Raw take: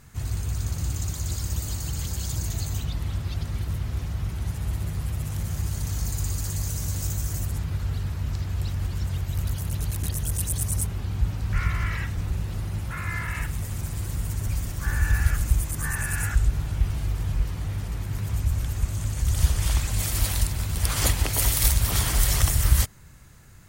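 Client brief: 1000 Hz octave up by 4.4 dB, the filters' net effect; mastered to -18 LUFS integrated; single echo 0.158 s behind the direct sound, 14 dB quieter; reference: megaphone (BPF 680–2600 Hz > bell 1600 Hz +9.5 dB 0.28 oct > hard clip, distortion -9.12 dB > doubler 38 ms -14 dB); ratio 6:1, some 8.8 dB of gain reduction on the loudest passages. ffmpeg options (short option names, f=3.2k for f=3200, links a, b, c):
-filter_complex "[0:a]equalizer=f=1k:t=o:g=5.5,acompressor=threshold=-24dB:ratio=6,highpass=680,lowpass=2.6k,equalizer=f=1.6k:t=o:w=0.28:g=9.5,aecho=1:1:158:0.2,asoftclip=type=hard:threshold=-32dB,asplit=2[a][b];[b]adelay=38,volume=-14dB[c];[a][c]amix=inputs=2:normalize=0,volume=22dB"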